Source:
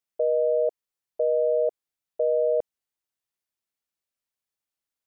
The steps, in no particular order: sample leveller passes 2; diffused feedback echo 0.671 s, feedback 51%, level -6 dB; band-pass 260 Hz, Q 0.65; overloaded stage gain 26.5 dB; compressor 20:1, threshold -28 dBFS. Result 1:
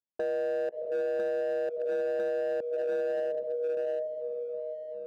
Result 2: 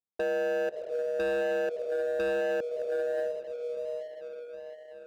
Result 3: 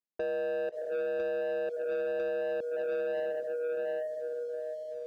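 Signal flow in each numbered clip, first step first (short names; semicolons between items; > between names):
diffused feedback echo > compressor > sample leveller > band-pass > overloaded stage; band-pass > compressor > diffused feedback echo > sample leveller > overloaded stage; diffused feedback echo > compressor > overloaded stage > band-pass > sample leveller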